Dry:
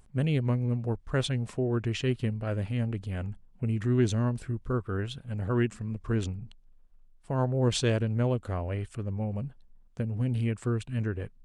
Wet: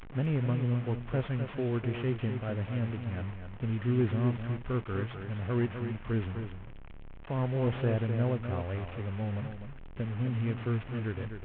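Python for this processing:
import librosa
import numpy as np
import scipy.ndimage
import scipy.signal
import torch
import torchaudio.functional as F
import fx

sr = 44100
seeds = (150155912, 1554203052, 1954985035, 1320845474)

y = fx.delta_mod(x, sr, bps=16000, step_db=-36.0)
y = y + 10.0 ** (-8.0 / 20.0) * np.pad(y, (int(253 * sr / 1000.0), 0))[:len(y)]
y = F.gain(torch.from_numpy(y), -3.0).numpy()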